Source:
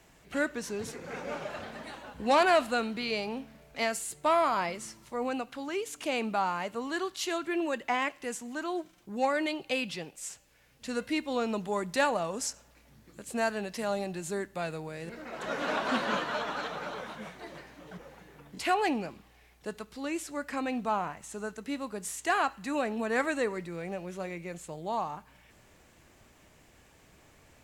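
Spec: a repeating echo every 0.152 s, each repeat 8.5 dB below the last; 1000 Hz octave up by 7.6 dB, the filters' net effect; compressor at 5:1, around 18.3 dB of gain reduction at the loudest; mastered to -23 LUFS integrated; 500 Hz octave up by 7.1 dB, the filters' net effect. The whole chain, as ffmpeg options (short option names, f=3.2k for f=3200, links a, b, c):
-af "equalizer=f=500:t=o:g=6.5,equalizer=f=1k:t=o:g=7.5,acompressor=threshold=-34dB:ratio=5,aecho=1:1:152|304|456|608:0.376|0.143|0.0543|0.0206,volume=14.5dB"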